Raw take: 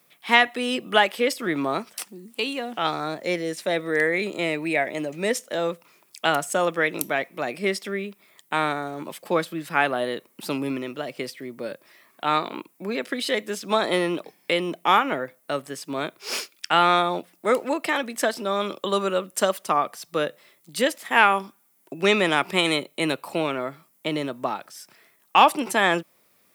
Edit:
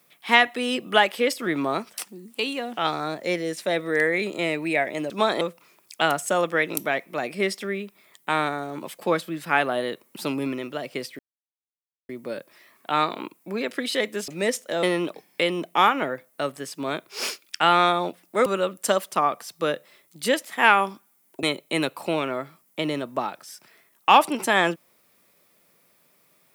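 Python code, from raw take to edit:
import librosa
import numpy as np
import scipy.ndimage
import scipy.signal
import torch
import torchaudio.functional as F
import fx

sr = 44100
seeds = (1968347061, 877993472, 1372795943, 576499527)

y = fx.edit(x, sr, fx.swap(start_s=5.1, length_s=0.55, other_s=13.62, other_length_s=0.31),
    fx.insert_silence(at_s=11.43, length_s=0.9),
    fx.cut(start_s=17.56, length_s=1.43),
    fx.cut(start_s=21.96, length_s=0.74), tone=tone)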